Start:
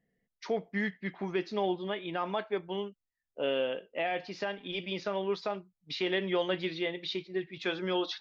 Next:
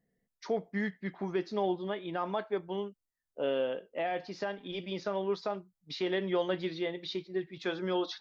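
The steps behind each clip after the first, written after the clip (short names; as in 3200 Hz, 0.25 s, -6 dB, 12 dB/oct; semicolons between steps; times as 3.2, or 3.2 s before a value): bell 2600 Hz -7.5 dB 0.93 oct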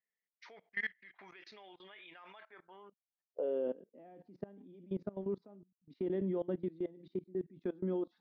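band-pass sweep 2300 Hz -> 240 Hz, 2.37–3.87; level quantiser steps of 21 dB; gain +8 dB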